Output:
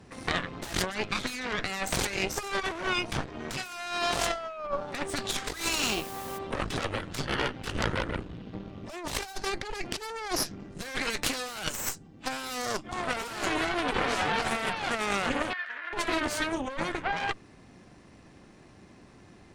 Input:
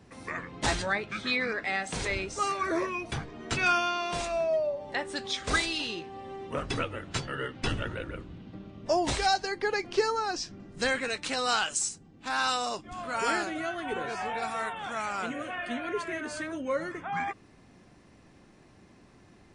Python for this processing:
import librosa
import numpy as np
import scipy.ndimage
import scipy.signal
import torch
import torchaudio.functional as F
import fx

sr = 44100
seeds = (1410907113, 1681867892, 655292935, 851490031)

y = fx.cheby_harmonics(x, sr, harmonics=(8,), levels_db=(-10,), full_scale_db=-14.5)
y = fx.quant_dither(y, sr, seeds[0], bits=8, dither='triangular', at=(5.65, 6.37), fade=0.02)
y = fx.over_compress(y, sr, threshold_db=-30.0, ratio=-0.5)
y = fx.bandpass_q(y, sr, hz=1700.0, q=4.2, at=(15.53, 15.93))